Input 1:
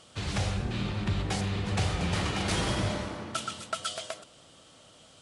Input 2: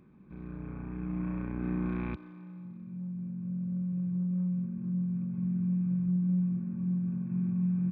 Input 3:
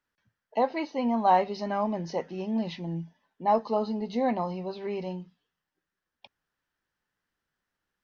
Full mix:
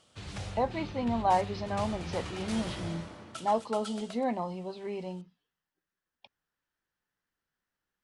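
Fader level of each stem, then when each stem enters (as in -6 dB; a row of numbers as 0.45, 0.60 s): -9.5 dB, off, -4.0 dB; 0.00 s, off, 0.00 s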